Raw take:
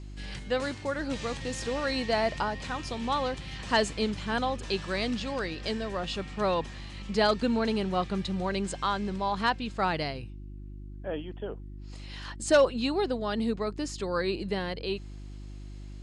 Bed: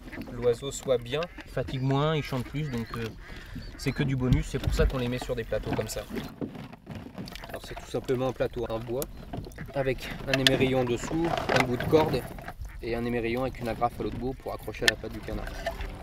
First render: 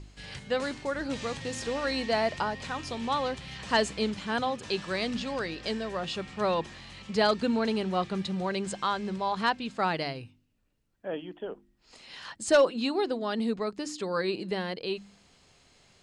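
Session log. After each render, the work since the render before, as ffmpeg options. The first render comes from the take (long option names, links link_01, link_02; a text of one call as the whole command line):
ffmpeg -i in.wav -af "bandreject=frequency=50:width_type=h:width=4,bandreject=frequency=100:width_type=h:width=4,bandreject=frequency=150:width_type=h:width=4,bandreject=frequency=200:width_type=h:width=4,bandreject=frequency=250:width_type=h:width=4,bandreject=frequency=300:width_type=h:width=4,bandreject=frequency=350:width_type=h:width=4" out.wav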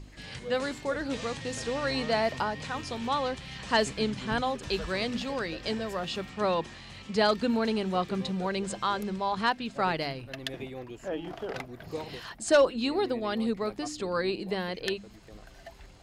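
ffmpeg -i in.wav -i bed.wav -filter_complex "[1:a]volume=-15dB[link_01];[0:a][link_01]amix=inputs=2:normalize=0" out.wav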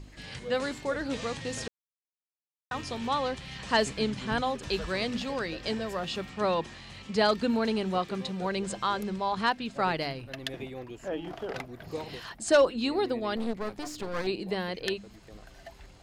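ffmpeg -i in.wav -filter_complex "[0:a]asettb=1/sr,asplit=3[link_01][link_02][link_03];[link_01]atrim=end=7.984[link_04];[link_02]atrim=start=7.98:end=8.42,asetpts=PTS-STARTPTS,afade=type=in:duration=0.004:curve=qsin,afade=type=out:start_time=0.436:duration=0.004:curve=qsin,lowshelf=frequency=210:gain=-6.5[link_05];[link_03]atrim=start=8.416[link_06];[link_04][link_05]acrossfade=duration=0.004:curve1=hsin:curve2=qsin[link_07];[link_07][link_06]acrossfade=duration=0.004:curve1=qsin:curve2=hsin,asettb=1/sr,asplit=3[link_08][link_09][link_10];[link_08]atrim=end=13.364[link_11];[link_09]atrim=start=13.36:end=14.27,asetpts=PTS-STARTPTS,afade=type=in:duration=0.004:curve=qsin,afade=type=out:start_time=0.906:duration=0.004:curve=qsin,aeval=exprs='clip(val(0),-1,0.0075)':channel_layout=same[link_12];[link_10]atrim=start=14.266[link_13];[link_11][link_12]acrossfade=duration=0.004:curve1=hsin:curve2=qsin[link_14];[link_14][link_13]acrossfade=duration=0.004:curve1=qsin:curve2=hsin,asplit=3[link_15][link_16][link_17];[link_15]atrim=end=1.68,asetpts=PTS-STARTPTS,afade=type=out:start_time=1.676:duration=0.004:curve=hsin[link_18];[link_16]atrim=start=1.68:end=2.71,asetpts=PTS-STARTPTS,volume=0[link_19];[link_17]atrim=start=2.71,asetpts=PTS-STARTPTS,afade=type=in:duration=0.004:curve=hsin[link_20];[link_18][link_19][link_20]concat=n=3:v=0:a=1" out.wav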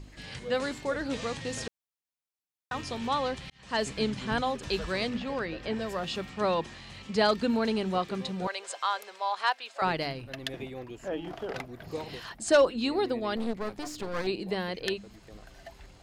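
ffmpeg -i in.wav -filter_complex "[0:a]asettb=1/sr,asplit=3[link_01][link_02][link_03];[link_01]atrim=end=5.094[link_04];[link_02]atrim=start=5.09:end=5.79,asetpts=PTS-STARTPTS,afade=type=in:duration=0.004:curve=qsin,afade=type=out:start_time=0.696:duration=0.004:curve=qsin,acrossover=split=3100[link_05][link_06];[link_06]acompressor=threshold=-54dB:ratio=4:attack=1:release=60[link_07];[link_05][link_07]amix=inputs=2:normalize=0[link_08];[link_03]atrim=start=5.786[link_09];[link_04][link_08]acrossfade=duration=0.004:curve1=hsin:curve2=qsin[link_10];[link_10][link_09]acrossfade=duration=0.004:curve1=qsin:curve2=hsin,asettb=1/sr,asplit=3[link_11][link_12][link_13];[link_11]atrim=end=8.474[link_14];[link_12]atrim=start=8.47:end=9.82,asetpts=PTS-STARTPTS,afade=type=in:duration=0.004:curve=qsin,afade=type=out:start_time=1.346:duration=0.004:curve=qsin,highpass=frequency=590:width=0.5412,highpass=frequency=590:width=1.3066[link_15];[link_13]atrim=start=9.816[link_16];[link_14][link_15]acrossfade=duration=0.004:curve1=hsin:curve2=qsin[link_17];[link_17][link_16]acrossfade=duration=0.004:curve1=qsin:curve2=hsin,asplit=2[link_18][link_19];[link_18]atrim=end=3.5,asetpts=PTS-STARTPTS,afade=type=out:start_time=3.496:duration=0.004:curve=hsin[link_20];[link_19]atrim=start=3.5,asetpts=PTS-STARTPTS,afade=type=in:duration=0.47[link_21];[link_20][link_21]concat=n=2:v=0:a=1" out.wav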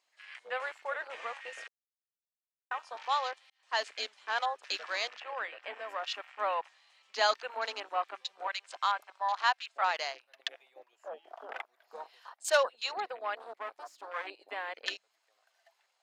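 ffmpeg -i in.wav -af "highpass=frequency=680:width=0.5412,highpass=frequency=680:width=1.3066,afwtdn=0.00891" out.wav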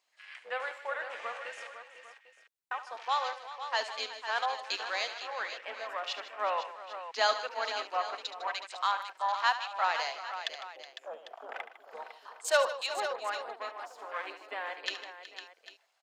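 ffmpeg -i in.wav -af "aecho=1:1:72|154|370|504|799:0.237|0.188|0.168|0.299|0.158" out.wav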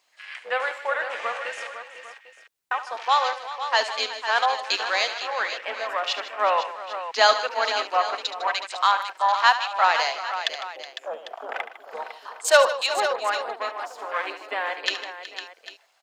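ffmpeg -i in.wav -af "volume=10dB" out.wav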